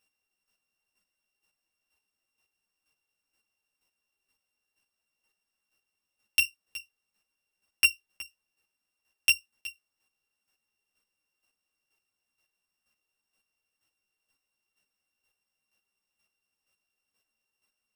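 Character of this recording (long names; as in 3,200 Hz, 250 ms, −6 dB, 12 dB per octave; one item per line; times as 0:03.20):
a buzz of ramps at a fixed pitch in blocks of 16 samples
chopped level 2.1 Hz, depth 60%, duty 15%
a shimmering, thickened sound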